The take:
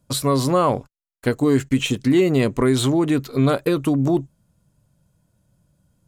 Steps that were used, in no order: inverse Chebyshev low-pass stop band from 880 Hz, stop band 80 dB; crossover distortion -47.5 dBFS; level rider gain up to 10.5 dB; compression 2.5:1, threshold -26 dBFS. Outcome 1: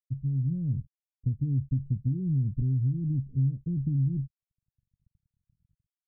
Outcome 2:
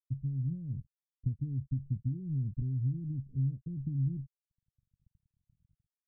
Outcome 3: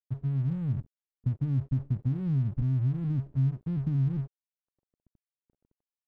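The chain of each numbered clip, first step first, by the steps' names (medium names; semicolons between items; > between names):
level rider > crossover distortion > inverse Chebyshev low-pass > compression; level rider > compression > crossover distortion > inverse Chebyshev low-pass; level rider > inverse Chebyshev low-pass > compression > crossover distortion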